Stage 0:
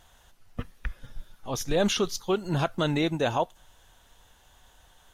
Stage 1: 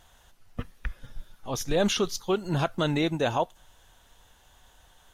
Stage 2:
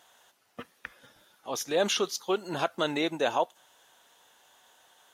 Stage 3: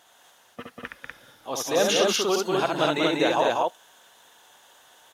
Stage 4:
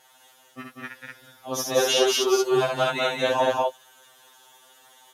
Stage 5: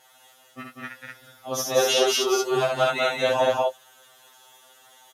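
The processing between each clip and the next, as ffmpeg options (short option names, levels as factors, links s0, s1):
-af anull
-af "highpass=340"
-af "aecho=1:1:67.06|192.4|244.9:0.631|0.631|0.794,volume=1.33"
-af "equalizer=f=12000:t=o:w=0.69:g=4.5,afftfilt=real='re*2.45*eq(mod(b,6),0)':imag='im*2.45*eq(mod(b,6),0)':win_size=2048:overlap=0.75,volume=1.33"
-filter_complex "[0:a]asplit=2[s0][s1];[s1]adelay=17,volume=0.398[s2];[s0][s2]amix=inputs=2:normalize=0"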